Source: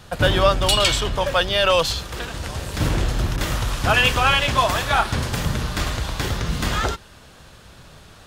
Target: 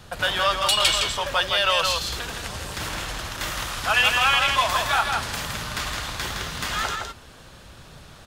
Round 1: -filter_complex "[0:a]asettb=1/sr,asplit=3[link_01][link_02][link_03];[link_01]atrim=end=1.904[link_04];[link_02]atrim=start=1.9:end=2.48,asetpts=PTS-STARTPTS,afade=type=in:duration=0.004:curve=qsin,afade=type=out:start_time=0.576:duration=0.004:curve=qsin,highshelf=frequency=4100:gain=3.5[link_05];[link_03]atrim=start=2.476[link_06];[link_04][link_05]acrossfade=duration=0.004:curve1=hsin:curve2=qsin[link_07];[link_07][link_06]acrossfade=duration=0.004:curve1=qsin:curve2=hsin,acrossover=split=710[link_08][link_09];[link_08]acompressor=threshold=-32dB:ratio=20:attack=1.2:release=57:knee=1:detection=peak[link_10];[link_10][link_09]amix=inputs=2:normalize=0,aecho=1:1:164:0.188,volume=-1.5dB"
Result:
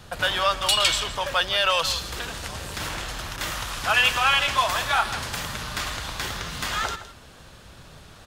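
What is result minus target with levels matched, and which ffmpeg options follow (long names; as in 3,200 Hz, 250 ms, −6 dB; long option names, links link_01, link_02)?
echo-to-direct −10 dB
-filter_complex "[0:a]asettb=1/sr,asplit=3[link_01][link_02][link_03];[link_01]atrim=end=1.904[link_04];[link_02]atrim=start=1.9:end=2.48,asetpts=PTS-STARTPTS,afade=type=in:duration=0.004:curve=qsin,afade=type=out:start_time=0.576:duration=0.004:curve=qsin,highshelf=frequency=4100:gain=3.5[link_05];[link_03]atrim=start=2.476[link_06];[link_04][link_05]acrossfade=duration=0.004:curve1=hsin:curve2=qsin[link_07];[link_07][link_06]acrossfade=duration=0.004:curve1=qsin:curve2=hsin,acrossover=split=710[link_08][link_09];[link_08]acompressor=threshold=-32dB:ratio=20:attack=1.2:release=57:knee=1:detection=peak[link_10];[link_10][link_09]amix=inputs=2:normalize=0,aecho=1:1:164:0.596,volume=-1.5dB"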